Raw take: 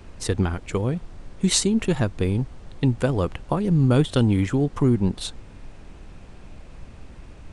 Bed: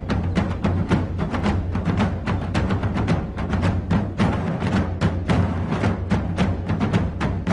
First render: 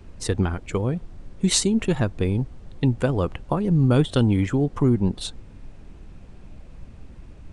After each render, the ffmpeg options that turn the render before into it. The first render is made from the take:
ffmpeg -i in.wav -af "afftdn=noise_reduction=6:noise_floor=-44" out.wav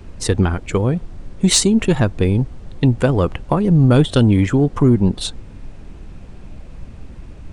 ffmpeg -i in.wav -af "acontrast=85" out.wav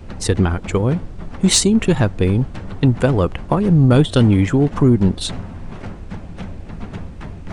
ffmpeg -i in.wav -i bed.wav -filter_complex "[1:a]volume=-11.5dB[link_01];[0:a][link_01]amix=inputs=2:normalize=0" out.wav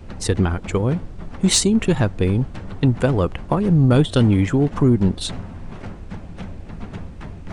ffmpeg -i in.wav -af "volume=-2.5dB" out.wav

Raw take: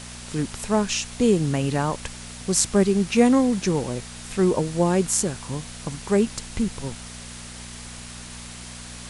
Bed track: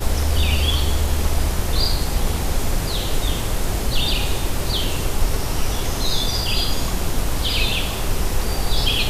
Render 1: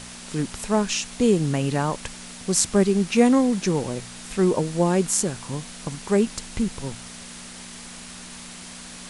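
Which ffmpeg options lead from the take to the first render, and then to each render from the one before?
ffmpeg -i in.wav -af "bandreject=frequency=60:width_type=h:width=4,bandreject=frequency=120:width_type=h:width=4" out.wav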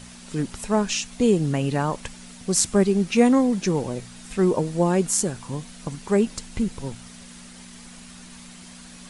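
ffmpeg -i in.wav -af "afftdn=noise_reduction=7:noise_floor=-40" out.wav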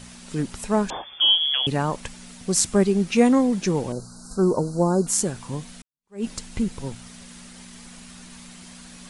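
ffmpeg -i in.wav -filter_complex "[0:a]asettb=1/sr,asplit=3[link_01][link_02][link_03];[link_01]atrim=end=0.904[link_04];[link_02]atrim=start=0.9:end=1.67,asetpts=PTS-STARTPTS,afade=type=in:duration=0.004:curve=qsin,afade=type=out:start_time=0.766:duration=0.004:curve=qsin,lowpass=frequency=3000:width_type=q:width=0.5098,lowpass=frequency=3000:width_type=q:width=0.6013,lowpass=frequency=3000:width_type=q:width=0.9,lowpass=frequency=3000:width_type=q:width=2.563,afreqshift=-3500[link_05];[link_03]atrim=start=1.666[link_06];[link_04][link_05]acrossfade=duration=0.004:curve1=hsin:curve2=qsin[link_07];[link_07][link_06]acrossfade=duration=0.004:curve1=qsin:curve2=hsin,asettb=1/sr,asplit=3[link_08][link_09][link_10];[link_08]atrim=end=3.924[link_11];[link_09]atrim=start=3.92:end=5.07,asetpts=PTS-STARTPTS,afade=type=in:duration=0.004:curve=qsin,afade=type=out:start_time=1.146:duration=0.004:curve=qsin,asuperstop=centerf=2500:order=20:qfactor=1[link_12];[link_10]atrim=start=5.066[link_13];[link_11][link_12]acrossfade=duration=0.004:curve1=hsin:curve2=qsin[link_14];[link_14][link_13]acrossfade=duration=0.004:curve1=qsin:curve2=hsin,asplit=2[link_15][link_16];[link_15]atrim=end=5.82,asetpts=PTS-STARTPTS,afade=type=out:start_time=5.816:duration=0.004:curve=hsin[link_17];[link_16]atrim=start=5.82,asetpts=PTS-STARTPTS,afade=type=in:duration=0.43:curve=exp[link_18];[link_17][link_18]concat=n=2:v=0:a=1" out.wav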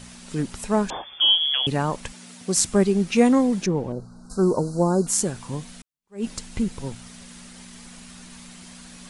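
ffmpeg -i in.wav -filter_complex "[0:a]asettb=1/sr,asplit=3[link_01][link_02][link_03];[link_01]atrim=end=2.124[link_04];[link_02]atrim=start=2.12:end=2.57,asetpts=PTS-STARTPTS,afade=type=in:duration=0.004:curve=qsin,afade=type=out:start_time=0.446:duration=0.004:curve=qsin,highpass=150[link_05];[link_03]atrim=start=2.566[link_06];[link_04][link_05]acrossfade=duration=0.004:curve1=hsin:curve2=qsin[link_07];[link_07][link_06]acrossfade=duration=0.004:curve1=qsin:curve2=hsin,asettb=1/sr,asplit=3[link_08][link_09][link_10];[link_08]atrim=end=3.664[link_11];[link_09]atrim=start=3.66:end=4.3,asetpts=PTS-STARTPTS,afade=type=in:duration=0.004:curve=qsin,afade=type=out:start_time=0.636:duration=0.004:curve=qsin,lowpass=frequency=1000:poles=1[link_12];[link_10]atrim=start=4.296[link_13];[link_11][link_12]acrossfade=duration=0.004:curve1=hsin:curve2=qsin[link_14];[link_14][link_13]acrossfade=duration=0.004:curve1=qsin:curve2=hsin" out.wav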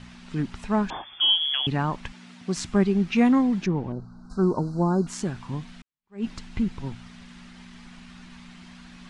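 ffmpeg -i in.wav -af "lowpass=3300,equalizer=frequency=510:width_type=o:width=0.65:gain=-10" out.wav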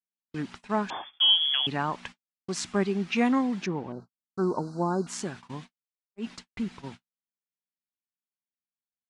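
ffmpeg -i in.wav -af "highpass=frequency=410:poles=1,agate=range=-60dB:threshold=-42dB:ratio=16:detection=peak" out.wav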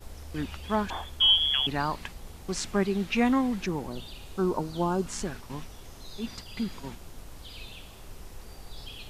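ffmpeg -i in.wav -i bed.wav -filter_complex "[1:a]volume=-23.5dB[link_01];[0:a][link_01]amix=inputs=2:normalize=0" out.wav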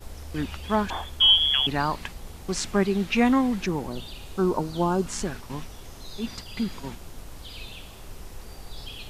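ffmpeg -i in.wav -af "volume=3.5dB" out.wav

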